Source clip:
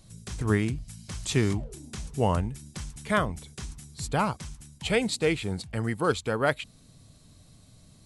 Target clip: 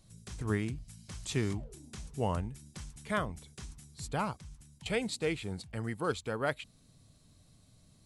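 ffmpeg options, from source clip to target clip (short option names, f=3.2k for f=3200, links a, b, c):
-filter_complex "[0:a]asettb=1/sr,asplit=3[a][b][c];[a]atrim=end=4.384[d];[b]atrim=start=4.38:end=4.86,asetpts=PTS-STARTPTS,afade=t=in:d=0.004:c=qsin,afade=t=out:st=0.476:d=0.004:c=qsin,acrossover=split=180[e][f];[f]acompressor=threshold=-49dB:ratio=10[g];[e][g]amix=inputs=2:normalize=0[h];[c]atrim=start=4.856[i];[d][h]acrossfade=d=0.004:c1=hsin:c2=qsin[j];[j][i]acrossfade=d=0.004:c1=qsin:c2=hsin,volume=-7.5dB"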